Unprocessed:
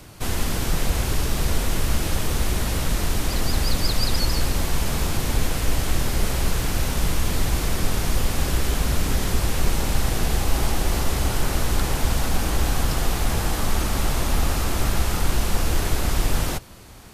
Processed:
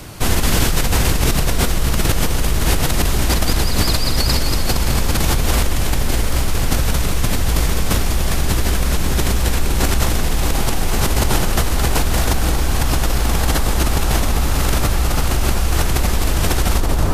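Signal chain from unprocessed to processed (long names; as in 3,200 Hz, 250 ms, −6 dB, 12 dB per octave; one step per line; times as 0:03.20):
echo with a time of its own for lows and highs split 1,400 Hz, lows 620 ms, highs 229 ms, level −3 dB
in parallel at +2.5 dB: compressor whose output falls as the input rises −22 dBFS, ratio −0.5
on the sum: level −1.5 dB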